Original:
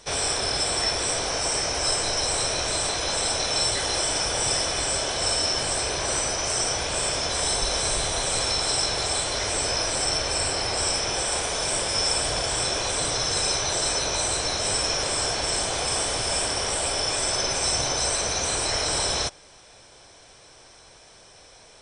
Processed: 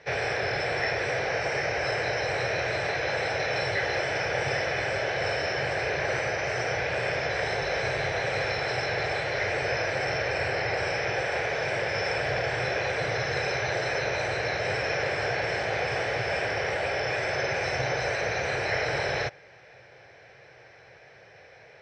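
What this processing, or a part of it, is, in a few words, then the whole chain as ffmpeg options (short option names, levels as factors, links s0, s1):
guitar cabinet: -af "highpass=110,equalizer=f=820:t=q:w=4:g=6,equalizer=f=1700:t=q:w=4:g=4,equalizer=f=3300:t=q:w=4:g=-8,lowpass=f=4500:w=0.5412,lowpass=f=4500:w=1.3066,equalizer=f=125:t=o:w=1:g=8,equalizer=f=250:t=o:w=1:g=-11,equalizer=f=500:t=o:w=1:g=7,equalizer=f=1000:t=o:w=1:g=-11,equalizer=f=2000:t=o:w=1:g=9,equalizer=f=4000:t=o:w=1:g=-6,equalizer=f=8000:t=o:w=1:g=-7"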